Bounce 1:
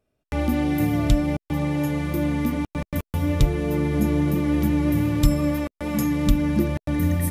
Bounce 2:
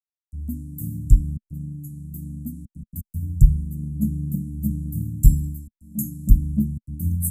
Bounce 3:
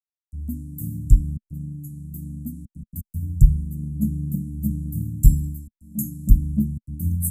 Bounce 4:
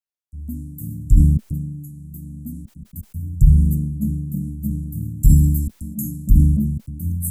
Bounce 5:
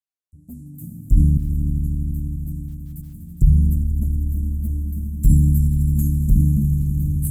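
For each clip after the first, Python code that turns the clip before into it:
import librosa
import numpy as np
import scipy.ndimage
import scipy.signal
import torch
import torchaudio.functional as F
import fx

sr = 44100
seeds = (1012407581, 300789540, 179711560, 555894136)

y1 = scipy.signal.sosfilt(scipy.signal.cheby1(4, 1.0, [220.0, 7600.0], 'bandstop', fs=sr, output='sos'), x)
y1 = fx.band_widen(y1, sr, depth_pct=100)
y1 = y1 * librosa.db_to_amplitude(-1.0)
y2 = y1
y3 = fx.sustainer(y2, sr, db_per_s=39.0)
y3 = y3 * librosa.db_to_amplitude(-1.0)
y4 = fx.env_flanger(y3, sr, rest_ms=10.4, full_db=-10.5)
y4 = fx.echo_swell(y4, sr, ms=82, loudest=5, wet_db=-14.5)
y4 = y4 * librosa.db_to_amplitude(-2.0)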